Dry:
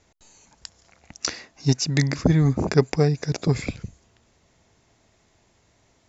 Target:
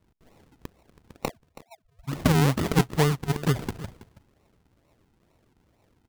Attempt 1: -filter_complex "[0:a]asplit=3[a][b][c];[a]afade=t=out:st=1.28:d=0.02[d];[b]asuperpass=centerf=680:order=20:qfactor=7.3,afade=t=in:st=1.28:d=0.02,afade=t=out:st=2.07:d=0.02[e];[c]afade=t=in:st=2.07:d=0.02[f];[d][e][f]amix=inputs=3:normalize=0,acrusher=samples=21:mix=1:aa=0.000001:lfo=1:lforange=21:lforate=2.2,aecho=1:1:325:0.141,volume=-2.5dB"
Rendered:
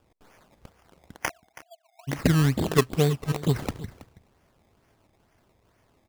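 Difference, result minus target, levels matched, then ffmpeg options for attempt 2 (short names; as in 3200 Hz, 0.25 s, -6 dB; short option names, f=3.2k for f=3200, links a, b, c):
decimation with a swept rate: distortion -9 dB
-filter_complex "[0:a]asplit=3[a][b][c];[a]afade=t=out:st=1.28:d=0.02[d];[b]asuperpass=centerf=680:order=20:qfactor=7.3,afade=t=in:st=1.28:d=0.02,afade=t=out:st=2.07:d=0.02[e];[c]afade=t=in:st=2.07:d=0.02[f];[d][e][f]amix=inputs=3:normalize=0,acrusher=samples=53:mix=1:aa=0.000001:lfo=1:lforange=53:lforate=2.2,aecho=1:1:325:0.141,volume=-2.5dB"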